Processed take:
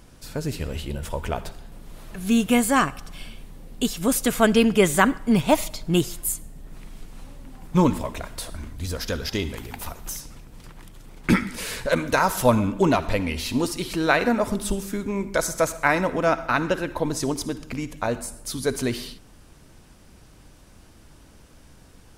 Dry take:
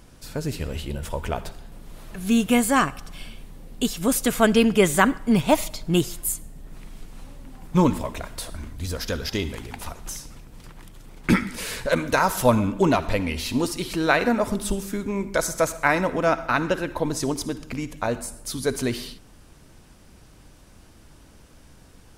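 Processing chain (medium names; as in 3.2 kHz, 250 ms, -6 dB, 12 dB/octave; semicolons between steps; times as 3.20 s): 9.57–10.21 s: peaking EQ 14 kHz +13 dB 0.29 oct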